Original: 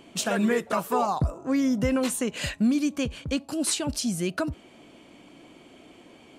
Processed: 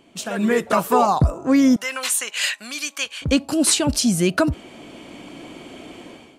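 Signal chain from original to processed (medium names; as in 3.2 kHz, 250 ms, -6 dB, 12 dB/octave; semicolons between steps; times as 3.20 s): 1.76–3.22 s: high-pass 1.4 kHz 12 dB/octave; level rider gain up to 15.5 dB; trim -3.5 dB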